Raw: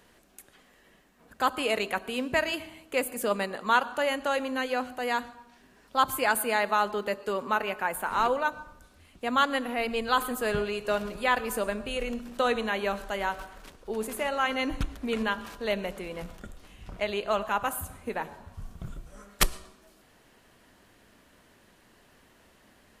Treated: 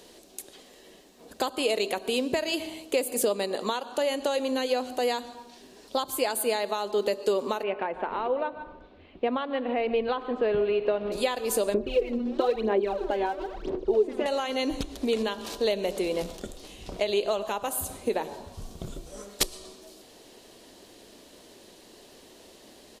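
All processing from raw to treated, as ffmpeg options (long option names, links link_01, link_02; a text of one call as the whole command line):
ffmpeg -i in.wav -filter_complex "[0:a]asettb=1/sr,asplit=3[link_01][link_02][link_03];[link_01]atrim=end=7.634[link_04];[link_02]atrim=start=7.63:end=11.12,asetpts=PTS-STARTPTS,afade=type=in:duration=0.004:curve=qsin,afade=type=out:start_time=3.486:duration=0.004:curve=qsin,lowpass=frequency=2600:width=0.5412,lowpass=frequency=2600:width=1.3066,aecho=1:1:148:0.133,atrim=end_sample=153909[link_05];[link_03]atrim=start=11.116[link_06];[link_04][link_05]acrossfade=duration=0.004:curve1=hsin:curve2=qsin[link_07];[link_07][link_06]acrossfade=duration=0.004:curve1=qsin:curve2=hsin,asettb=1/sr,asplit=3[link_08][link_09][link_10];[link_08]atrim=end=11.744[link_11];[link_09]atrim=start=11.74:end=14.26,asetpts=PTS-STARTPTS,afade=type=in:duration=0.004:curve=qsin,afade=type=out:start_time=2.516:duration=0.004:curve=qsin,lowpass=2000,equalizer=frequency=360:width_type=o:width=0.21:gain=15,aphaser=in_gain=1:out_gain=1:delay=4.1:decay=0.73:speed=1:type=sinusoidal[link_12];[link_10]atrim=start=14.256[link_13];[link_11][link_12]acrossfade=duration=0.004:curve1=hsin:curve2=qsin[link_14];[link_14][link_13]acrossfade=duration=0.004:curve1=qsin:curve2=hsin,acompressor=threshold=-32dB:ratio=6,firequalizer=gain_entry='entry(130,0);entry(360,13);entry(1400,-2);entry(3900,14);entry(14000,7)':delay=0.05:min_phase=1" out.wav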